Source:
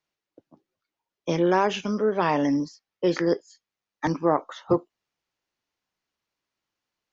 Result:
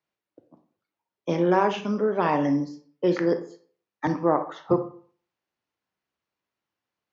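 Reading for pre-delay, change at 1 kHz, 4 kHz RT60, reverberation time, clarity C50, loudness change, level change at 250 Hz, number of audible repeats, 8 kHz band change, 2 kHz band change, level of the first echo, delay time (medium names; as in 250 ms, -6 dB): 28 ms, +0.5 dB, 0.35 s, 0.45 s, 11.5 dB, 0.0 dB, 0.0 dB, no echo, no reading, -1.5 dB, no echo, no echo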